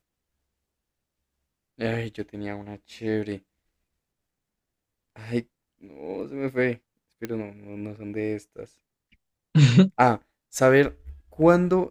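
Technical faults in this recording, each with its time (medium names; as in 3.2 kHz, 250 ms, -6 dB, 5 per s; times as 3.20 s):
7.25 s: pop -17 dBFS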